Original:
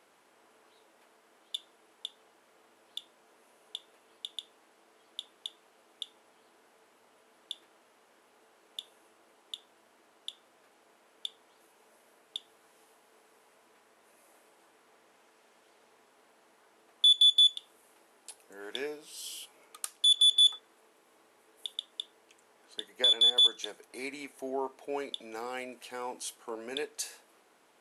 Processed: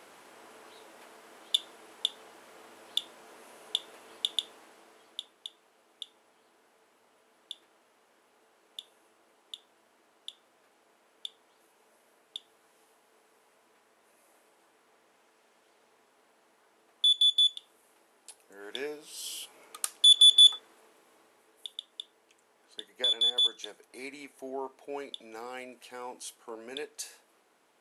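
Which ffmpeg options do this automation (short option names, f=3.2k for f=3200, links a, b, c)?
-af "volume=17.5dB,afade=t=out:st=4.33:d=1.01:silence=0.237137,afade=t=in:st=18.57:d=1.22:silence=0.446684,afade=t=out:st=20.5:d=1.19:silence=0.398107"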